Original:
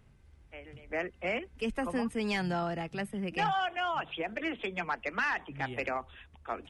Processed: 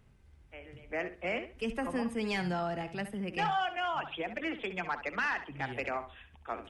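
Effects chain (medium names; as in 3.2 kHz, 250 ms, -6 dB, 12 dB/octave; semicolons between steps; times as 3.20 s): tape echo 67 ms, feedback 26%, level -10 dB, low-pass 4.6 kHz; trim -1.5 dB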